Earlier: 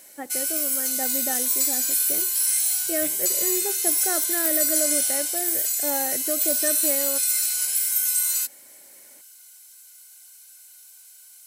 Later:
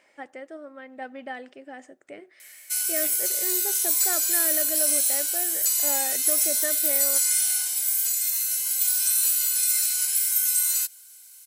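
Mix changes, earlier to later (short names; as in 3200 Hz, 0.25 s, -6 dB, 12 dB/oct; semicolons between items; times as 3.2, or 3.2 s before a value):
background: entry +2.40 s; master: add low shelf 450 Hz -11 dB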